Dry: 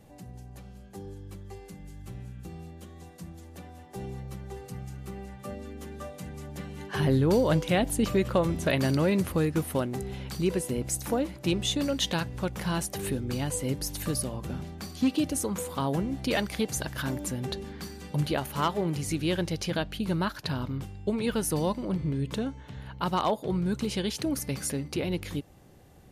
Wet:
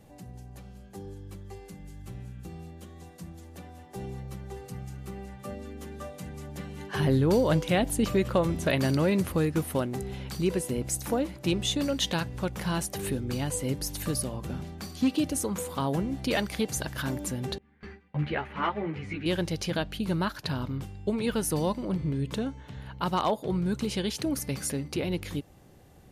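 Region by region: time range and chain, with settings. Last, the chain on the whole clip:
17.58–19.26 s: gate with hold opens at -28 dBFS, closes at -32 dBFS + resonant low-pass 2.1 kHz, resonance Q 2.6 + three-phase chorus
whole clip: none

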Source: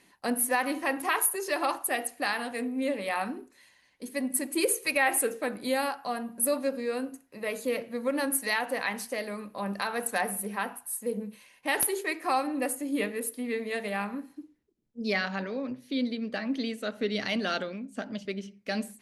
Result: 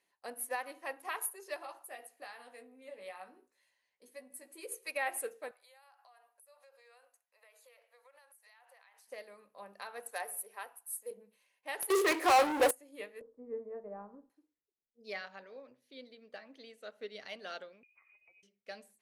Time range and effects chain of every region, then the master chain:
1.56–4.72 s: compression 2:1, threshold -33 dBFS + doubling 16 ms -5.5 dB
5.51–9.08 s: high-pass 680 Hz 24 dB/octave + compression 12:1, threshold -41 dBFS
10.11–11.11 s: high-pass 300 Hz 24 dB/octave + treble shelf 7 kHz +9.5 dB
11.90–12.71 s: resonant low shelf 230 Hz -11.5 dB, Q 3 + waveshaping leveller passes 5 + high-pass 41 Hz
13.21–14.30 s: low-pass 1.2 kHz 24 dB/octave + tilt EQ -4 dB/octave + band-stop 710 Hz, Q 10
17.83–18.43 s: compression 16:1, threshold -43 dBFS + frequency inversion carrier 2.7 kHz
whole clip: resonant low shelf 350 Hz -9 dB, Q 1.5; upward expansion 1.5:1, over -37 dBFS; trim -7 dB

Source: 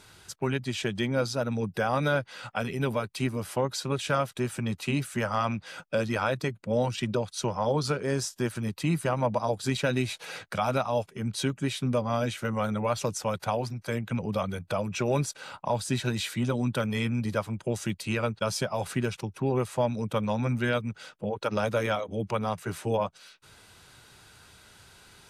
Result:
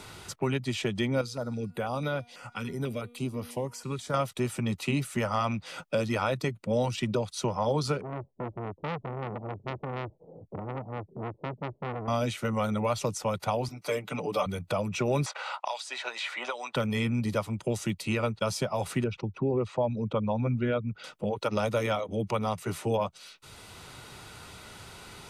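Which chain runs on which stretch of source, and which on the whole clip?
1.21–4.14 s: feedback comb 240 Hz, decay 1.1 s, mix 50% + step-sequenced notch 6.1 Hz 650–7700 Hz
8.01–12.08 s: Gaussian low-pass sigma 18 samples + transformer saturation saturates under 1.5 kHz
13.68–14.46 s: high-pass 290 Hz + band-stop 1.8 kHz, Q 16 + comb 6.8 ms, depth 97%
15.26–16.76 s: high-pass 650 Hz 24 dB/octave + distance through air 81 m + three bands compressed up and down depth 100%
19.04–21.04 s: resonances exaggerated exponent 1.5 + distance through air 190 m
whole clip: band-stop 1.6 kHz, Q 6.4; three bands compressed up and down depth 40%

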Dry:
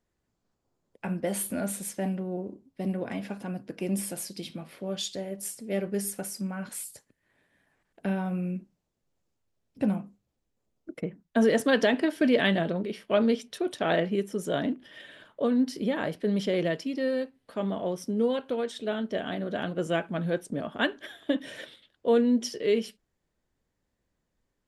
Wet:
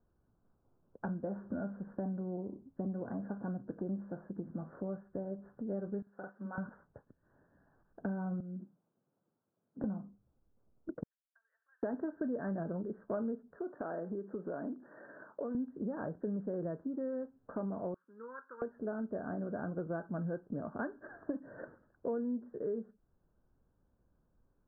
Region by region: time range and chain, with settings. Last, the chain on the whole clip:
6.02–6.58 s: high-pass 1.3 kHz 6 dB/octave + compression 5:1, threshold -38 dBFS + doubling 46 ms -2 dB
8.40–9.84 s: high-pass 150 Hz 24 dB/octave + compression 12:1, threshold -38 dBFS
11.03–11.83 s: compression 16:1, threshold -31 dBFS + ladder high-pass 2.7 kHz, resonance 85%
13.56–15.55 s: high-pass 240 Hz + compression 2:1, threshold -36 dBFS
17.94–18.62 s: high-pass 1.4 kHz + static phaser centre 2.6 kHz, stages 6
whole clip: steep low-pass 1.6 kHz 96 dB/octave; bass shelf 220 Hz +6 dB; compression 4:1, threshold -39 dBFS; trim +1.5 dB

